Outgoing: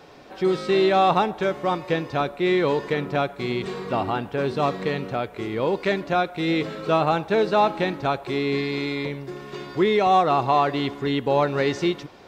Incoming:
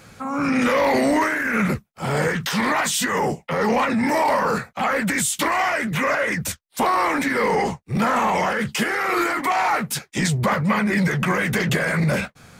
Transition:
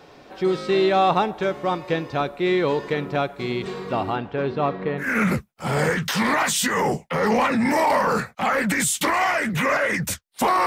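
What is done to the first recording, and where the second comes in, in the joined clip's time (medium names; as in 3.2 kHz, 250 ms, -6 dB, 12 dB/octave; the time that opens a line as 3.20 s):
outgoing
4.15–5.09 s: low-pass 4.8 kHz -> 1.5 kHz
5.03 s: go over to incoming from 1.41 s, crossfade 0.12 s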